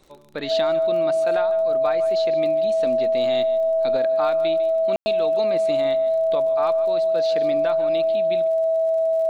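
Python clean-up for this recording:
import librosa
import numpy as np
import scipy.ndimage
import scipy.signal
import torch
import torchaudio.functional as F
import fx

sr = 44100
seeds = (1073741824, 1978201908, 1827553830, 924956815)

y = fx.fix_declick_ar(x, sr, threshold=6.5)
y = fx.notch(y, sr, hz=650.0, q=30.0)
y = fx.fix_ambience(y, sr, seeds[0], print_start_s=0.0, print_end_s=0.5, start_s=4.96, end_s=5.06)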